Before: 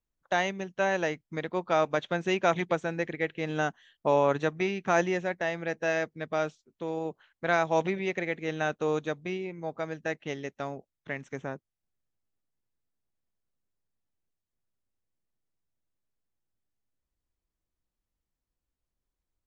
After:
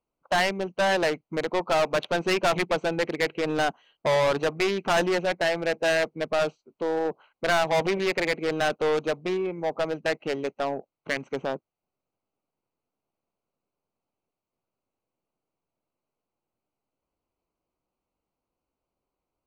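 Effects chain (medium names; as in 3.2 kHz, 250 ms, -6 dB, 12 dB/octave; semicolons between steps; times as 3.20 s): local Wiener filter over 25 samples; overdrive pedal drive 27 dB, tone 2.7 kHz, clips at -11 dBFS; treble shelf 2.3 kHz +8.5 dB; trim -4.5 dB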